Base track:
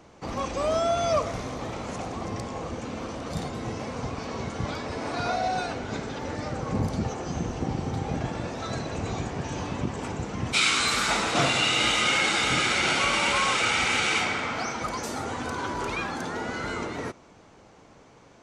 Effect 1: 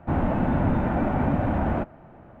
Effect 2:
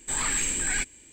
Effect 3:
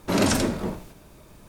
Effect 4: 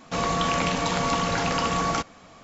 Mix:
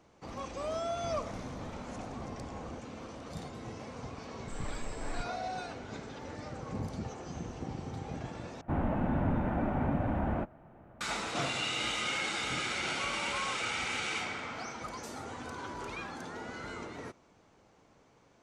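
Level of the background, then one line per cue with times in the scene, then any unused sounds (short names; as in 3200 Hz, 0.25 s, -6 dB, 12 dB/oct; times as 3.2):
base track -10.5 dB
0.96 add 1 -17.5 dB + compressor 2:1, threshold -27 dBFS
4.4 add 2 -18 dB + tilt -3 dB/oct
8.61 replace with 1 -7.5 dB
not used: 3, 4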